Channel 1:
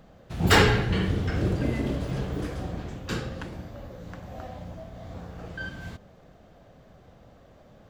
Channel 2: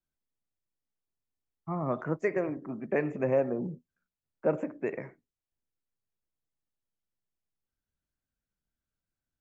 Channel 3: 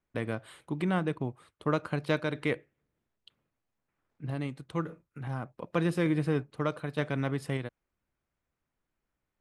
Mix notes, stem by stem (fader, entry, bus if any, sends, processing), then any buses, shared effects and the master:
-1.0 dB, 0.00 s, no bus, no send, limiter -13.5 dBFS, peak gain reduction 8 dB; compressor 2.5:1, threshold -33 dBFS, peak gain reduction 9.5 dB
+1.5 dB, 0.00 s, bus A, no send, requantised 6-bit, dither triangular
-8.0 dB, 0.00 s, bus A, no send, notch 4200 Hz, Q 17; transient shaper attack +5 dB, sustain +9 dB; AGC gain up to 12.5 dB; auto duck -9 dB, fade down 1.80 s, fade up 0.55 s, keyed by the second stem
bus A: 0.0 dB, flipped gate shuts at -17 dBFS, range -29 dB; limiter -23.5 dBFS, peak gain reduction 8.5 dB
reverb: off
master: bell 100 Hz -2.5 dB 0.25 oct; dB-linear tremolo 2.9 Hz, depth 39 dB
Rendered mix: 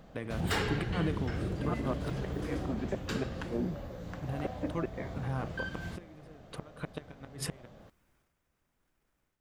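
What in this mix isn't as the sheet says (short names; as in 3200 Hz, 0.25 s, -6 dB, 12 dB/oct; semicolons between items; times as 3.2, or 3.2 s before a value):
stem 1: missing limiter -13.5 dBFS, peak gain reduction 8 dB; stem 2: missing requantised 6-bit, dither triangular; master: missing dB-linear tremolo 2.9 Hz, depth 39 dB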